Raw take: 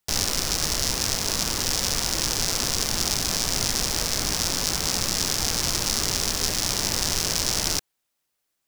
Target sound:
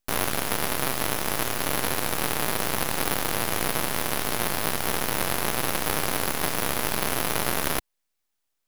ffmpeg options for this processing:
-af "highpass=150,aeval=exprs='abs(val(0))':c=same"

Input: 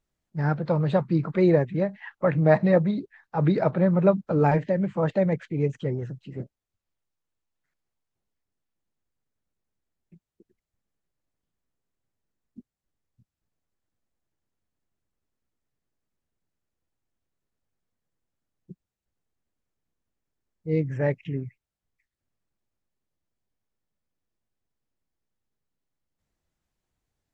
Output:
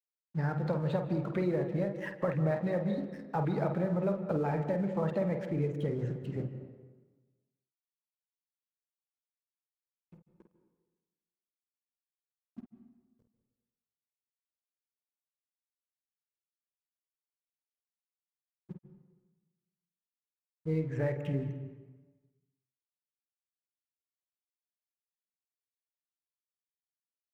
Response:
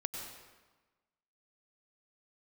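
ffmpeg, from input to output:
-filter_complex "[0:a]acompressor=threshold=-29dB:ratio=6,aeval=exprs='sgn(val(0))*max(abs(val(0))-0.00141,0)':c=same,asplit=2[a][b];[1:a]atrim=start_sample=2205,highshelf=f=3.6k:g=-12,adelay=50[c];[b][c]afir=irnorm=-1:irlink=0,volume=-4.5dB[d];[a][d]amix=inputs=2:normalize=0"

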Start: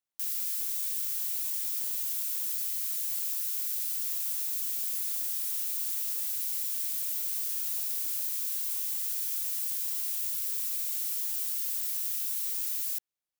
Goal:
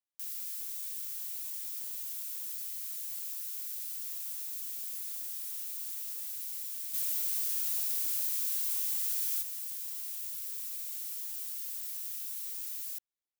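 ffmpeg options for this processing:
-filter_complex "[0:a]asplit=3[a][b][c];[a]afade=t=out:st=6.93:d=0.02[d];[b]acontrast=82,afade=t=in:st=6.93:d=0.02,afade=t=out:st=9.41:d=0.02[e];[c]afade=t=in:st=9.41:d=0.02[f];[d][e][f]amix=inputs=3:normalize=0,volume=-7dB"

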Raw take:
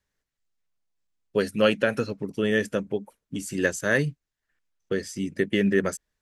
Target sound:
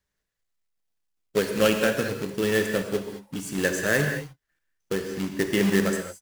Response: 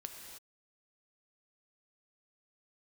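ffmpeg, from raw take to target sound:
-filter_complex "[0:a]asettb=1/sr,asplit=3[a][b][c];[a]atrim=end=4.984[d];[b]atrim=start=4.98:end=5.38,asetpts=PTS-STARTPTS,afade=t=in:d=0.004:c=qsin,afade=t=out:st=0.396:d=0.004:c=qsin,lowpass=f=2.1k:p=1[e];[c]atrim=start=5.376[f];[d][e]acrossfade=d=0.004:c1=hsin:c2=qsin[g];[g][f]acrossfade=d=0.004:c1=qsin:c2=hsin,acrusher=bits=2:mode=log:mix=0:aa=0.000001[h];[1:a]atrim=start_sample=2205,afade=t=out:st=0.28:d=0.01,atrim=end_sample=12789[i];[h][i]afir=irnorm=-1:irlink=0,volume=3.5dB"

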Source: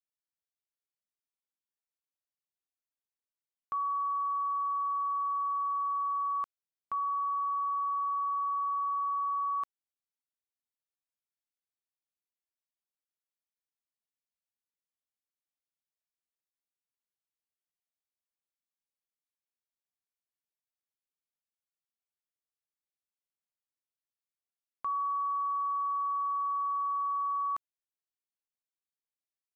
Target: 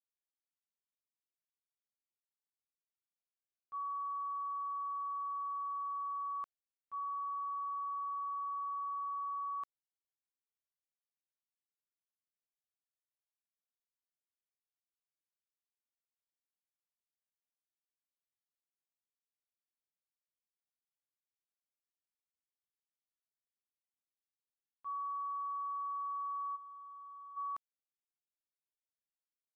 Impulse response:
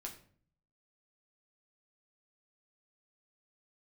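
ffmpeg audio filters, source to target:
-filter_complex "[0:a]agate=range=-33dB:threshold=-20dB:ratio=3:detection=peak,asplit=3[a][b][c];[a]afade=t=out:st=26.55:d=0.02[d];[b]equalizer=f=1.2k:t=o:w=2:g=-12,afade=t=in:st=26.55:d=0.02,afade=t=out:st=27.36:d=0.02[e];[c]afade=t=in:st=27.36:d=0.02[f];[d][e][f]amix=inputs=3:normalize=0,volume=11.5dB"

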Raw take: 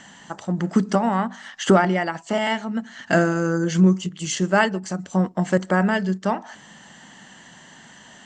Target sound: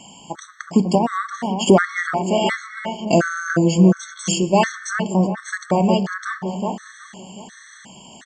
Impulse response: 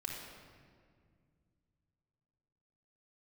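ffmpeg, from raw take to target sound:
-filter_complex "[0:a]highshelf=f=5.6k:g=8.5,asplit=2[a][b];[b]adelay=370,lowpass=f=1.8k:p=1,volume=-5.5dB,asplit=2[c][d];[d]adelay=370,lowpass=f=1.8k:p=1,volume=0.41,asplit=2[e][f];[f]adelay=370,lowpass=f=1.8k:p=1,volume=0.41,asplit=2[g][h];[h]adelay=370,lowpass=f=1.8k:p=1,volume=0.41,asplit=2[i][j];[j]adelay=370,lowpass=f=1.8k:p=1,volume=0.41[k];[a][c][e][g][i][k]amix=inputs=6:normalize=0,asplit=2[l][m];[1:a]atrim=start_sample=2205[n];[m][n]afir=irnorm=-1:irlink=0,volume=-11.5dB[o];[l][o]amix=inputs=2:normalize=0,afftfilt=real='re*gt(sin(2*PI*1.4*pts/sr)*(1-2*mod(floor(b*sr/1024/1100),2)),0)':imag='im*gt(sin(2*PI*1.4*pts/sr)*(1-2*mod(floor(b*sr/1024/1100),2)),0)':win_size=1024:overlap=0.75,volume=2.5dB"

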